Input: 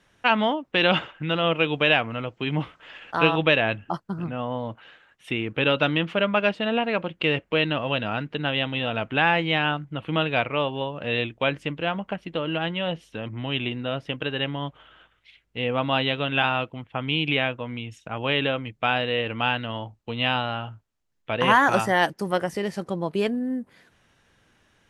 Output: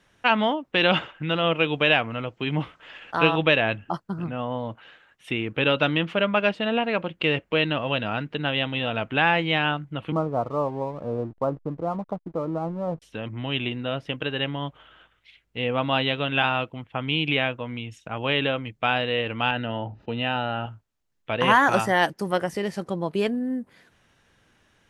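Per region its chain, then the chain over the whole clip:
10.12–13.02 steep low-pass 1300 Hz 96 dB/oct + backlash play -43.5 dBFS
19.51–20.66 air absorption 280 m + notch comb 1100 Hz + fast leveller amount 50%
whole clip: dry

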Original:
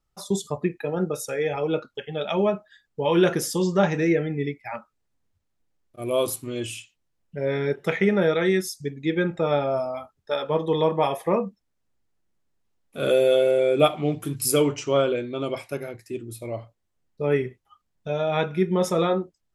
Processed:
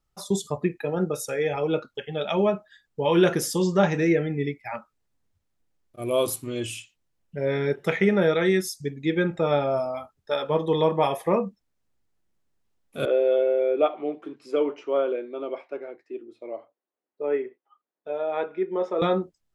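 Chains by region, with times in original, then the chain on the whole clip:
13.05–19.02 HPF 320 Hz 24 dB/oct + tape spacing loss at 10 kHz 41 dB
whole clip: dry

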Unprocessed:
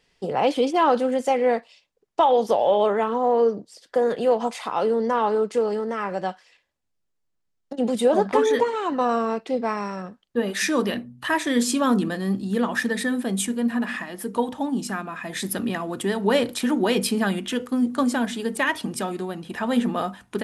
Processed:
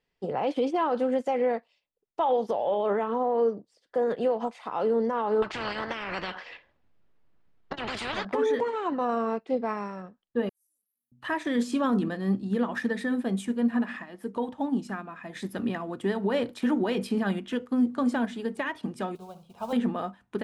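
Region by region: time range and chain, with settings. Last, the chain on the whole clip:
5.42–8.25 LPF 3400 Hz + spectral compressor 10:1
10.49–11.12 inverse Chebyshev high-pass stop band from 3000 Hz, stop band 80 dB + sustainer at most 41 dB/s
19.15–19.73 modulation noise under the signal 16 dB + fixed phaser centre 750 Hz, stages 4 + flutter echo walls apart 11.6 m, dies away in 0.33 s
whole clip: limiter -16 dBFS; LPF 2300 Hz 6 dB/oct; upward expander 1.5:1, over -44 dBFS

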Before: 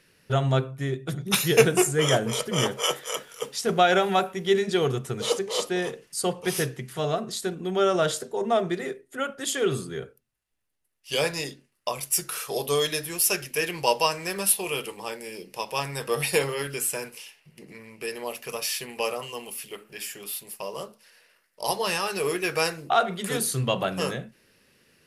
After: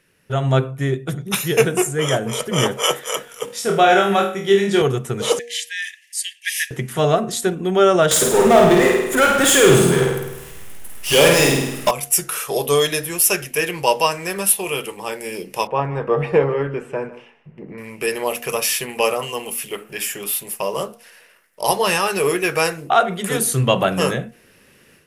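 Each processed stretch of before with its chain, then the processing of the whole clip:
3.45–4.82 HPF 97 Hz + flutter echo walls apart 4.3 m, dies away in 0.41 s
5.39–6.71 brick-wall FIR high-pass 1600 Hz + high shelf 6700 Hz -7 dB
8.11–11.91 power-law curve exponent 0.5 + flutter echo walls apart 8.8 m, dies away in 0.88 s
15.67–17.78 LPF 1200 Hz + echo 0.156 s -17.5 dB
whole clip: AGC; bell 4500 Hz -7.5 dB 0.54 oct; de-hum 237.2 Hz, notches 3

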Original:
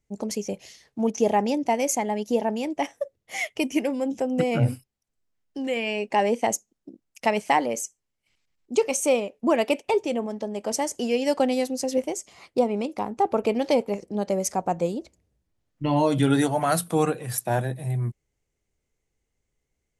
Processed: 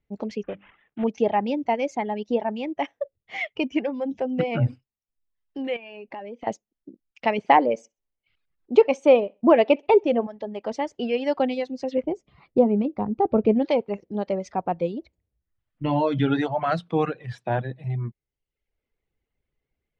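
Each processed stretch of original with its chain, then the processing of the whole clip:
0.43–1.04 CVSD 16 kbps + notches 50/100/150/200/250/300 Hz
5.76–6.47 high shelf 5400 Hz -8.5 dB + compressor 5:1, threshold -34 dBFS
7.38–10.27 bell 520 Hz +6.5 dB 2.8 oct + feedback echo 64 ms, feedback 26%, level -20 dB
12.03–13.65 tilt shelf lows +10 dB, about 650 Hz + doubler 14 ms -12.5 dB
whole clip: LPF 3700 Hz 24 dB/oct; reverb removal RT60 0.77 s

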